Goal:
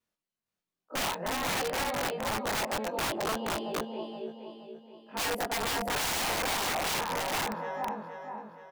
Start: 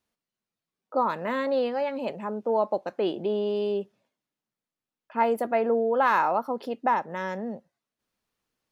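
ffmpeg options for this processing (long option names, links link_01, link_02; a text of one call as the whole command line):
ffmpeg -i in.wav -af "afftfilt=real='re':imag='-im':win_size=2048:overlap=0.75,aecho=1:1:472|944|1416|1888|2360|2832:0.631|0.297|0.139|0.0655|0.0308|0.0145,aeval=exprs='(mod(21.1*val(0)+1,2)-1)/21.1':channel_layout=same,adynamicequalizer=threshold=0.00355:dfrequency=810:dqfactor=2.3:tfrequency=810:tqfactor=2.3:attack=5:release=100:ratio=0.375:range=2.5:mode=boostabove:tftype=bell" out.wav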